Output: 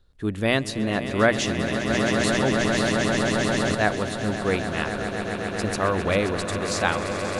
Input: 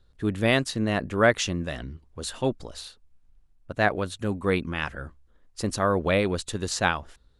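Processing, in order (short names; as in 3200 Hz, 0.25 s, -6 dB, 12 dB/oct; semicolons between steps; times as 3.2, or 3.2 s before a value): notches 60/120/180 Hz; on a send: swelling echo 0.133 s, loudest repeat 8, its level -11.5 dB; 1.9–3.75 on the sum: fast leveller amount 70%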